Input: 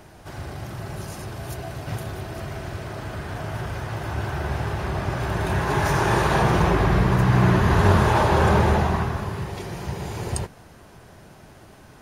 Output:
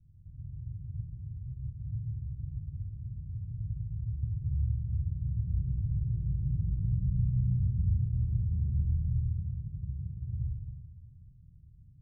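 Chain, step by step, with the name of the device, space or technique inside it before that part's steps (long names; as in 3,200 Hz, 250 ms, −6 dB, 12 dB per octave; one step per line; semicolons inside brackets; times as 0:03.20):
club heard from the street (brickwall limiter −13 dBFS, peak gain reduction 8.5 dB; low-pass filter 130 Hz 24 dB per octave; convolution reverb RT60 1.4 s, pre-delay 32 ms, DRR −1.5 dB)
level −7 dB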